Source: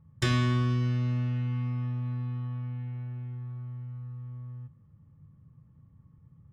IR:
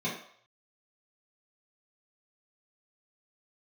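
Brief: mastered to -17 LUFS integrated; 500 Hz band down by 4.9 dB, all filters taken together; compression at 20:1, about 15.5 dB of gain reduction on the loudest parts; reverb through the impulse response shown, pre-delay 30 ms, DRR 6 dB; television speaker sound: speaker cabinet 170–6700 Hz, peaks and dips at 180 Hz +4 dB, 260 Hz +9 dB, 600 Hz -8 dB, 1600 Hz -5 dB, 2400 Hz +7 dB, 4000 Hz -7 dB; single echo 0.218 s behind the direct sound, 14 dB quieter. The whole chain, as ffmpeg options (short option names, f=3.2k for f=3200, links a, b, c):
-filter_complex "[0:a]equalizer=f=500:t=o:g=-8.5,acompressor=threshold=-38dB:ratio=20,aecho=1:1:218:0.2,asplit=2[a][b];[1:a]atrim=start_sample=2205,adelay=30[c];[b][c]afir=irnorm=-1:irlink=0,volume=-13dB[d];[a][d]amix=inputs=2:normalize=0,highpass=f=170:w=0.5412,highpass=f=170:w=1.3066,equalizer=f=180:t=q:w=4:g=4,equalizer=f=260:t=q:w=4:g=9,equalizer=f=600:t=q:w=4:g=-8,equalizer=f=1.6k:t=q:w=4:g=-5,equalizer=f=2.4k:t=q:w=4:g=7,equalizer=f=4k:t=q:w=4:g=-7,lowpass=f=6.7k:w=0.5412,lowpass=f=6.7k:w=1.3066,volume=21dB"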